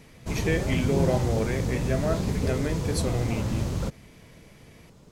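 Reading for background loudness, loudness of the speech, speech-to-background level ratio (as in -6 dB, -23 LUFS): -28.5 LUFS, -30.5 LUFS, -2.0 dB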